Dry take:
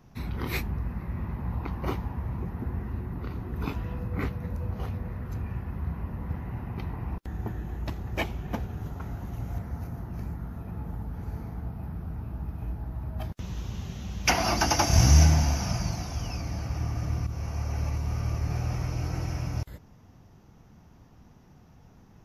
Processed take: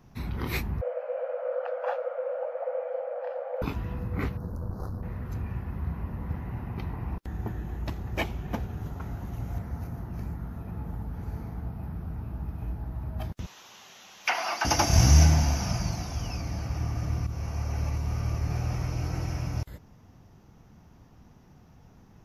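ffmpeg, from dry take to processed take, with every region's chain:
ffmpeg -i in.wav -filter_complex "[0:a]asettb=1/sr,asplit=3[link_01][link_02][link_03];[link_01]atrim=end=0.814[link_04];[link_02]atrim=start=0.81:end=3.62,asetpts=PTS-STARTPTS,afade=type=in:duration=0.004:curve=qsin,afade=type=out:start_time=2.806:duration=0.004:curve=qsin,lowpass=frequency=1000:poles=1,afreqshift=440[link_05];[link_03]atrim=start=3.616[link_06];[link_04][link_05]acrossfade=duration=0.004:curve1=hsin:curve2=qsin[link_07];[link_07][link_06]acrossfade=duration=0.004:curve1=qsin:curve2=hsin,asettb=1/sr,asplit=3[link_08][link_09][link_10];[link_08]atrim=end=4.374[link_11];[link_09]atrim=start=4.37:end=5.03,asetpts=PTS-STARTPTS,afade=type=in:duration=0.004:curve=qsin,afade=type=out:start_time=0.656:duration=0.004:curve=qsin,aeval=exprs='clip(val(0),-1,0.015)':channel_layout=same,asuperstop=centerf=2600:order=8:qfactor=0.94[link_12];[link_10]atrim=start=5.026[link_13];[link_11][link_12]acrossfade=duration=0.004:curve1=hsin:curve2=qsin[link_14];[link_14][link_13]acrossfade=duration=0.004:curve1=qsin:curve2=hsin,asettb=1/sr,asplit=3[link_15][link_16][link_17];[link_15]atrim=end=13.464[link_18];[link_16]atrim=start=13.46:end=14.65,asetpts=PTS-STARTPTS,afade=type=in:duration=0.004:curve=qsin,afade=type=out:start_time=1.186:duration=0.004:curve=qsin,highpass=810,acrossover=split=3600[link_19][link_20];[link_20]acompressor=threshold=-41dB:ratio=4:attack=1:release=60[link_21];[link_19][link_21]amix=inputs=2:normalize=0[link_22];[link_17]atrim=start=14.646[link_23];[link_18][link_22]acrossfade=duration=0.004:curve1=hsin:curve2=qsin[link_24];[link_24][link_23]acrossfade=duration=0.004:curve1=qsin:curve2=hsin" out.wav

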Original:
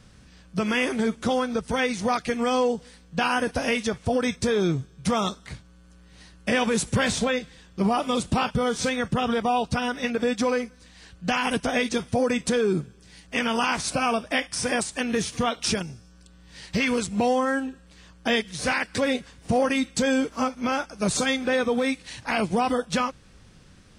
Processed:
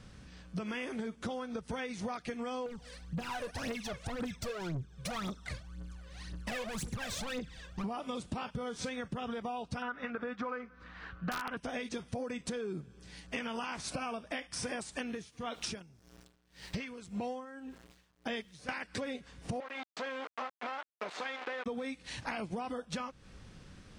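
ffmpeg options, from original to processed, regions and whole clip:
ffmpeg -i in.wav -filter_complex "[0:a]asettb=1/sr,asplit=3[link_01][link_02][link_03];[link_01]atrim=end=2.664[link_04];[link_02]atrim=start=2.66:end=7.84,asetpts=PTS-STARTPTS,afade=type=in:duration=0.004:curve=qsin,afade=type=out:start_time=5.176:duration=0.004:curve=qsin,volume=30.5dB,asoftclip=hard,volume=-30.5dB,aphaser=in_gain=1:out_gain=1:delay=2:decay=0.72:speed=1.9:type=triangular[link_05];[link_03]atrim=start=7.836[link_06];[link_04][link_05]acrossfade=duration=0.004:curve1=hsin:curve2=qsin[link_07];[link_07][link_06]acrossfade=duration=0.004:curve1=qsin:curve2=hsin,asettb=1/sr,asplit=3[link_08][link_09][link_10];[link_08]atrim=end=9.824[link_11];[link_09]atrim=start=9.82:end=11.57,asetpts=PTS-STARTPTS,afade=type=in:duration=0.004:curve=qsin,afade=type=out:start_time=1.746:duration=0.004:curve=qsin,lowpass=2700,equalizer=frequency=1300:width_type=o:width=0.78:gain=14.5,aeval=exprs='(mod(2.51*val(0)+1,2)-1)/2.51':channel_layout=same[link_12];[link_10]atrim=start=11.566[link_13];[link_11][link_12]acrossfade=duration=0.004:curve1=hsin:curve2=qsin[link_14];[link_14][link_13]acrossfade=duration=0.004:curve1=qsin:curve2=hsin,asettb=1/sr,asplit=3[link_15][link_16][link_17];[link_15]atrim=end=15.054[link_18];[link_16]atrim=start=15.05:end=18.69,asetpts=PTS-STARTPTS,afade=type=in:duration=0.004:curve=qsin,afade=type=out:start_time=3.636:duration=0.004:curve=qsin,aeval=exprs='val(0)*gte(abs(val(0)),0.00376)':channel_layout=same,aeval=exprs='val(0)*pow(10,-20*(0.5-0.5*cos(2*PI*1.8*n/s))/20)':channel_layout=same[link_19];[link_17]atrim=start=18.686[link_20];[link_18][link_19]acrossfade=duration=0.004:curve1=hsin:curve2=qsin[link_21];[link_21][link_20]acrossfade=duration=0.004:curve1=qsin:curve2=hsin,asettb=1/sr,asplit=3[link_22][link_23][link_24];[link_22]atrim=end=19.604[link_25];[link_23]atrim=start=19.6:end=21.66,asetpts=PTS-STARTPTS,afade=type=in:duration=0.004:curve=qsin,afade=type=out:start_time=2.056:duration=0.004:curve=qsin,acompressor=threshold=-24dB:ratio=3:attack=3.2:release=140:knee=1:detection=peak,aeval=exprs='val(0)*gte(abs(val(0)),0.0422)':channel_layout=same,highpass=580,lowpass=2700[link_26];[link_24]atrim=start=21.656[link_27];[link_25][link_26]acrossfade=duration=0.004:curve1=hsin:curve2=qsin[link_28];[link_28][link_27]acrossfade=duration=0.004:curve1=qsin:curve2=hsin,highshelf=frequency=6300:gain=-6.5,acompressor=threshold=-34dB:ratio=12,volume=-1dB" out.wav

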